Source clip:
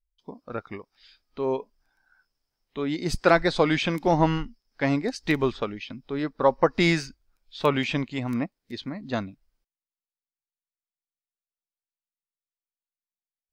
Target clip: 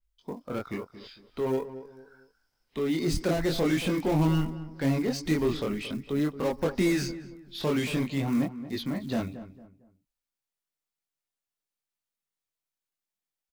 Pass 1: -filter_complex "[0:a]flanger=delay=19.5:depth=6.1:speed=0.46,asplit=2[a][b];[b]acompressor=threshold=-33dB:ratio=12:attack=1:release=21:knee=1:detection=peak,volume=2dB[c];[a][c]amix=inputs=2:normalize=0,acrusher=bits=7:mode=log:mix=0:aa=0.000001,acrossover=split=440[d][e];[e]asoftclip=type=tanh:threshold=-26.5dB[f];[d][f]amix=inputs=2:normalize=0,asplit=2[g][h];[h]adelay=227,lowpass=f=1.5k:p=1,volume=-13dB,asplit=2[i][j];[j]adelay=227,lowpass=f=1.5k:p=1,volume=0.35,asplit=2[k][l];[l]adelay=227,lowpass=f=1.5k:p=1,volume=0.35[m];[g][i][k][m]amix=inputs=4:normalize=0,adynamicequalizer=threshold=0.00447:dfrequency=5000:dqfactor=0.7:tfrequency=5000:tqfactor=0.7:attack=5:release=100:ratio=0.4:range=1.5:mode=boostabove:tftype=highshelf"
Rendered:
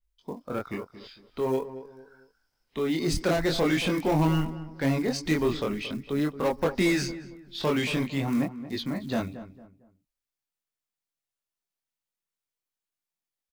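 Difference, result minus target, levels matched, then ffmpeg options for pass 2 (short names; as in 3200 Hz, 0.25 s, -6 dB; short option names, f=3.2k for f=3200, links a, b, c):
soft clip: distortion -4 dB
-filter_complex "[0:a]flanger=delay=19.5:depth=6.1:speed=0.46,asplit=2[a][b];[b]acompressor=threshold=-33dB:ratio=12:attack=1:release=21:knee=1:detection=peak,volume=2dB[c];[a][c]amix=inputs=2:normalize=0,acrusher=bits=7:mode=log:mix=0:aa=0.000001,acrossover=split=440[d][e];[e]asoftclip=type=tanh:threshold=-33.5dB[f];[d][f]amix=inputs=2:normalize=0,asplit=2[g][h];[h]adelay=227,lowpass=f=1.5k:p=1,volume=-13dB,asplit=2[i][j];[j]adelay=227,lowpass=f=1.5k:p=1,volume=0.35,asplit=2[k][l];[l]adelay=227,lowpass=f=1.5k:p=1,volume=0.35[m];[g][i][k][m]amix=inputs=4:normalize=0,adynamicequalizer=threshold=0.00447:dfrequency=5000:dqfactor=0.7:tfrequency=5000:tqfactor=0.7:attack=5:release=100:ratio=0.4:range=1.5:mode=boostabove:tftype=highshelf"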